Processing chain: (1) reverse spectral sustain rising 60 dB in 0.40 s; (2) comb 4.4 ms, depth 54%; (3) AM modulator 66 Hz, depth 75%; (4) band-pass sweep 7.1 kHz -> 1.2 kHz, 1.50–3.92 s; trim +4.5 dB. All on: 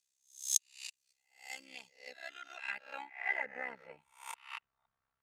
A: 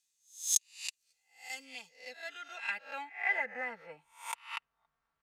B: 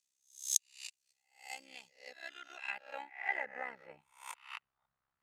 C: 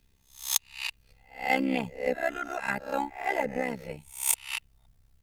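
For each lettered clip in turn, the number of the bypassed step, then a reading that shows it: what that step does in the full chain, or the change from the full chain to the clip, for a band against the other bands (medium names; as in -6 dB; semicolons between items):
3, crest factor change -3.0 dB; 2, 1 kHz band +2.0 dB; 4, 250 Hz band +18.5 dB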